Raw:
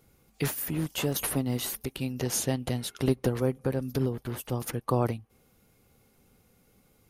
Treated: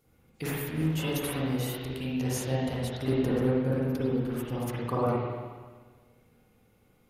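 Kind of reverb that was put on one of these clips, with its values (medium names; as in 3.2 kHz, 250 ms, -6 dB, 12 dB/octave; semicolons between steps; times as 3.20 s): spring tank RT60 1.5 s, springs 38/47/51 ms, chirp 65 ms, DRR -7.5 dB; trim -7.5 dB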